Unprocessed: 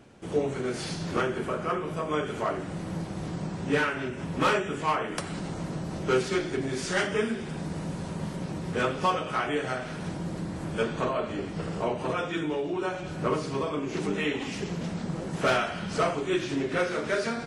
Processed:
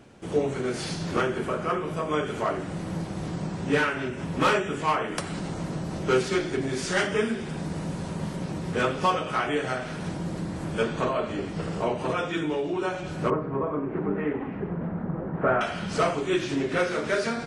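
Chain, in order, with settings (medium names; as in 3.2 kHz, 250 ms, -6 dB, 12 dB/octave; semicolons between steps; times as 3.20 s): 13.30–15.61 s: low-pass 1.6 kHz 24 dB/octave; trim +2 dB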